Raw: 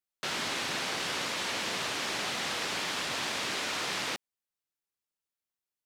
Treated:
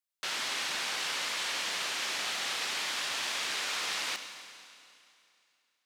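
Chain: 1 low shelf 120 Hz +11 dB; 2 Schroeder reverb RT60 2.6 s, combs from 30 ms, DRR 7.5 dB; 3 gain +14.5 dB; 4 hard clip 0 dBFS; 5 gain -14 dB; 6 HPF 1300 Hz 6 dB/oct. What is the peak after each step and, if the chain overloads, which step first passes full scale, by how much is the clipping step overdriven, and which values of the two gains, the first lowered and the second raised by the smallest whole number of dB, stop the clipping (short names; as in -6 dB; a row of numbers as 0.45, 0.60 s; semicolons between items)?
-20.0, -18.5, -4.0, -4.0, -18.0, -21.0 dBFS; no overload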